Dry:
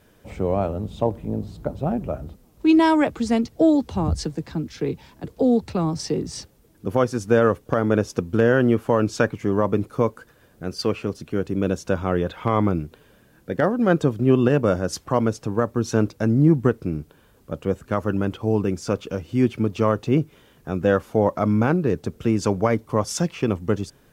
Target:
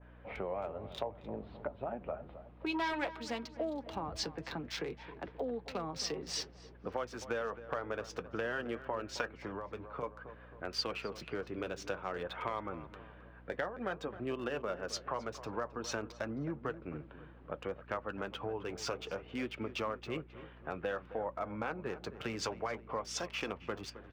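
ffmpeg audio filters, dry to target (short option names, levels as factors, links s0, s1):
-filter_complex "[0:a]acrossover=split=2700[s0][s1];[s1]acrusher=bits=6:mix=0:aa=0.000001[s2];[s0][s2]amix=inputs=2:normalize=0,flanger=delay=3.1:depth=4.4:regen=-56:speed=0.56:shape=sinusoidal,asplit=3[s3][s4][s5];[s3]afade=t=out:st=2.74:d=0.02[s6];[s4]aeval=exprs='0.266*sin(PI/2*1.58*val(0)/0.266)':c=same,afade=t=in:st=2.74:d=0.02,afade=t=out:st=3.15:d=0.02[s7];[s5]afade=t=in:st=3.15:d=0.02[s8];[s6][s7][s8]amix=inputs=3:normalize=0,acrossover=split=490 5200:gain=0.158 1 0.1[s9][s10][s11];[s9][s10][s11]amix=inputs=3:normalize=0,acompressor=threshold=0.00794:ratio=4,asplit=2[s12][s13];[s13]adelay=266,lowpass=f=1900:p=1,volume=0.211,asplit=2[s14][s15];[s15]adelay=266,lowpass=f=1900:p=1,volume=0.5,asplit=2[s16][s17];[s17]adelay=266,lowpass=f=1900:p=1,volume=0.5,asplit=2[s18][s19];[s19]adelay=266,lowpass=f=1900:p=1,volume=0.5,asplit=2[s20][s21];[s21]adelay=266,lowpass=f=1900:p=1,volume=0.5[s22];[s14][s16][s18][s20][s22]amix=inputs=5:normalize=0[s23];[s12][s23]amix=inputs=2:normalize=0,asettb=1/sr,asplit=3[s24][s25][s26];[s24]atrim=end=9.344[s27];[s25]atrim=start=9.34:end=10.03,asetpts=PTS-STARTPTS,afade=t=in:d=0.004:c=qsin,afade=t=out:st=0.686:d=0.004:c=qsin,acrossover=split=180|3000[s28][s29][s30];[s29]acompressor=threshold=0.00631:ratio=6[s31];[s28][s31][s30]amix=inputs=3:normalize=0[s32];[s26]atrim=start=10.026[s33];[s27][s32]acrossfade=d=0.004:c1=hsin:c2=qsin[s34];[s34][s33]acrossfade=d=0.004:c1=qsin:c2=hsin,aeval=exprs='val(0)+0.001*(sin(2*PI*60*n/s)+sin(2*PI*2*60*n/s)/2+sin(2*PI*3*60*n/s)/3+sin(2*PI*4*60*n/s)/4+sin(2*PI*5*60*n/s)/5)':c=same,adynamicequalizer=threshold=0.00126:dfrequency=1800:dqfactor=0.7:tfrequency=1800:tqfactor=0.7:attack=5:release=100:ratio=0.375:range=2.5:mode=boostabove:tftype=highshelf,volume=1.68"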